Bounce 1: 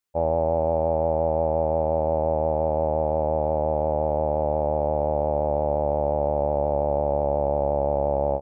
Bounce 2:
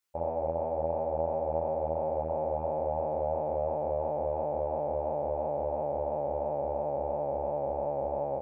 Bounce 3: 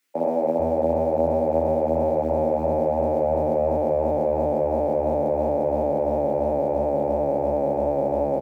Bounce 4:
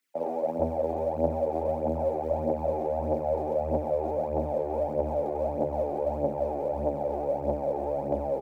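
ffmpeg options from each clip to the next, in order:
-af "lowshelf=f=400:g=-7,alimiter=limit=0.0631:level=0:latency=1:release=85,flanger=delay=20:depth=5:speed=2.9,volume=1.78"
-filter_complex "[0:a]equalizer=f=250:t=o:w=1:g=11,equalizer=f=1000:t=o:w=1:g=-5,equalizer=f=2000:t=o:w=1:g=7,acrossover=split=210|240|1000[s0][s1][s2][s3];[s1]acrusher=bits=5:mode=log:mix=0:aa=0.000001[s4];[s0][s4][s2][s3]amix=inputs=4:normalize=0,acrossover=split=170[s5][s6];[s5]adelay=440[s7];[s7][s6]amix=inputs=2:normalize=0,volume=2.66"
-af "aphaser=in_gain=1:out_gain=1:delay=2.9:decay=0.56:speed=1.6:type=triangular,volume=0.398"

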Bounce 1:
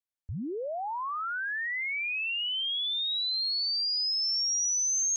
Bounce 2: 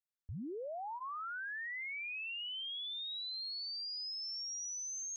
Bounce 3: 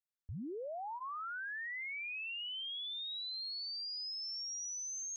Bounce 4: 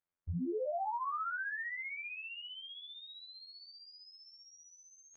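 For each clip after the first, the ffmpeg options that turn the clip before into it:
-af "bandreject=f=1000:w=20,alimiter=level_in=2.51:limit=0.0631:level=0:latency=1,volume=0.398,volume=0.447"
-af anull
-af "lowpass=1600,afftfilt=real='hypot(re,im)*cos(PI*b)':imag='0':win_size=2048:overlap=0.75,volume=3.16"

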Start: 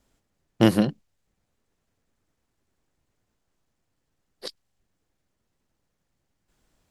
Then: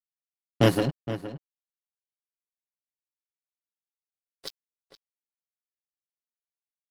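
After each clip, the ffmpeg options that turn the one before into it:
-filter_complex "[0:a]aecho=1:1:7.2:0.93,aeval=exprs='sgn(val(0))*max(abs(val(0))-0.0188,0)':c=same,asplit=2[s0][s1];[s1]adelay=466.5,volume=0.251,highshelf=f=4000:g=-10.5[s2];[s0][s2]amix=inputs=2:normalize=0,volume=0.841"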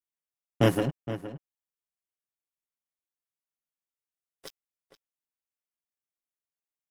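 -af "equalizer=f=4300:w=3.5:g=-13,volume=0.794"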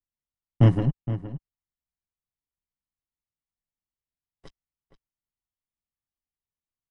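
-af "aresample=22050,aresample=44100,aemphasis=mode=reproduction:type=riaa,aecho=1:1:1:0.35,volume=0.596"

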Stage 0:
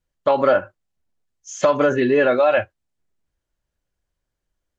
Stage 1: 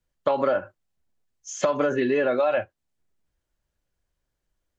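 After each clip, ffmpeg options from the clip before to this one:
-filter_complex "[0:a]acrossover=split=130|1000[s0][s1][s2];[s0]acompressor=threshold=0.00224:ratio=4[s3];[s1]acompressor=threshold=0.0891:ratio=4[s4];[s2]acompressor=threshold=0.0251:ratio=4[s5];[s3][s4][s5]amix=inputs=3:normalize=0"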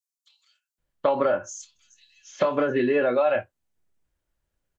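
-filter_complex "[0:a]asplit=2[s0][s1];[s1]adelay=25,volume=0.282[s2];[s0][s2]amix=inputs=2:normalize=0,acrossover=split=5000[s3][s4];[s3]adelay=780[s5];[s5][s4]amix=inputs=2:normalize=0"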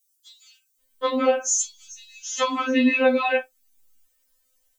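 -af "crystalizer=i=6.5:c=0,afftfilt=real='re*3.46*eq(mod(b,12),0)':imag='im*3.46*eq(mod(b,12),0)':win_size=2048:overlap=0.75,volume=1.41"

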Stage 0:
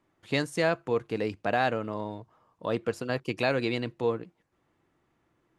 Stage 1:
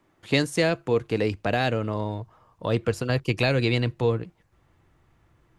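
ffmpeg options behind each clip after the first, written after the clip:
-filter_complex "[0:a]asubboost=boost=5.5:cutoff=110,acrossover=split=550|2000[s0][s1][s2];[s1]acompressor=threshold=0.0112:ratio=6[s3];[s0][s3][s2]amix=inputs=3:normalize=0,volume=2.24"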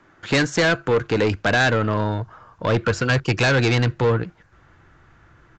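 -af "equalizer=f=1500:t=o:w=0.51:g=11.5,aresample=16000,asoftclip=type=tanh:threshold=0.0794,aresample=44100,volume=2.66"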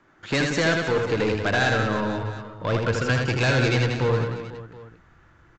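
-af "aecho=1:1:80|184|319.2|495|723.4:0.631|0.398|0.251|0.158|0.1,volume=0.562"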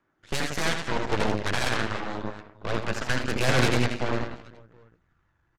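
-af "aphaser=in_gain=1:out_gain=1:delay=1.2:decay=0.28:speed=0.83:type=sinusoidal,aeval=exprs='0.376*(cos(1*acos(clip(val(0)/0.376,-1,1)))-cos(1*PI/2))+0.106*(cos(3*acos(clip(val(0)/0.376,-1,1)))-cos(3*PI/2))+0.0596*(cos(6*acos(clip(val(0)/0.376,-1,1)))-cos(6*PI/2))':c=same"

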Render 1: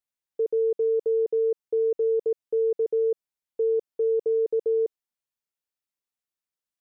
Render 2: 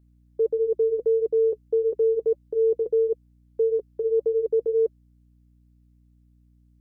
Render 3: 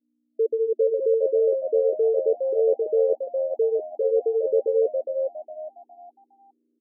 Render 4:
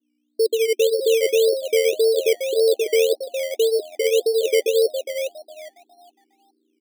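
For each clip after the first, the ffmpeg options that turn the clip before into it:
-af "flanger=delay=2.9:depth=3:regen=-47:speed=1.6:shape=triangular,aeval=exprs='val(0)+0.000708*(sin(2*PI*60*n/s)+sin(2*PI*2*60*n/s)/2+sin(2*PI*3*60*n/s)/3+sin(2*PI*4*60*n/s)/4+sin(2*PI*5*60*n/s)/5)':c=same,volume=2"
-filter_complex "[0:a]agate=range=0.0224:threshold=0.002:ratio=3:detection=peak,afftfilt=real='re*between(b*sr/4096,230,640)':imag='im*between(b*sr/4096,230,640)':win_size=4096:overlap=0.75,asplit=5[s0][s1][s2][s3][s4];[s1]adelay=411,afreqshift=85,volume=0.596[s5];[s2]adelay=822,afreqshift=170,volume=0.184[s6];[s3]adelay=1233,afreqshift=255,volume=0.0575[s7];[s4]adelay=1644,afreqshift=340,volume=0.0178[s8];[s0][s5][s6][s7][s8]amix=inputs=5:normalize=0"
-af "bandpass=f=360:t=q:w=2.7:csg=0,acrusher=samples=13:mix=1:aa=0.000001:lfo=1:lforange=7.8:lforate=1.8,volume=2.37"

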